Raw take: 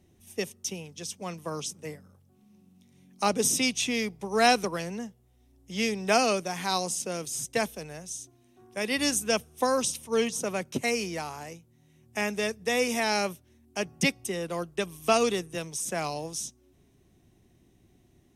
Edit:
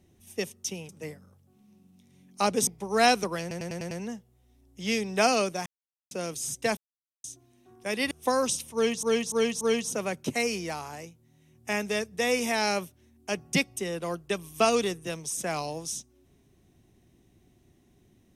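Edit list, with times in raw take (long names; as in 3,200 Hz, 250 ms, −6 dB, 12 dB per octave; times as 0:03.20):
0:00.89–0:01.71: remove
0:03.49–0:04.08: remove
0:04.82: stutter 0.10 s, 6 plays
0:06.57–0:07.02: silence
0:07.68–0:08.15: silence
0:09.02–0:09.46: remove
0:10.09–0:10.38: repeat, 4 plays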